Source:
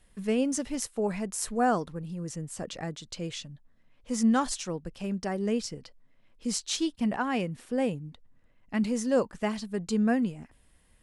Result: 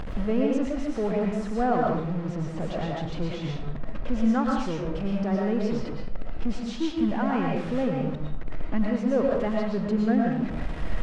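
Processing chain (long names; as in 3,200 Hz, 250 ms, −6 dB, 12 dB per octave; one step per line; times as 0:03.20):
converter with a step at zero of −30.5 dBFS
upward compression, threshold −27 dBFS
head-to-tape spacing loss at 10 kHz 33 dB
convolution reverb RT60 0.60 s, pre-delay 75 ms, DRR −1.5 dB
one half of a high-frequency compander decoder only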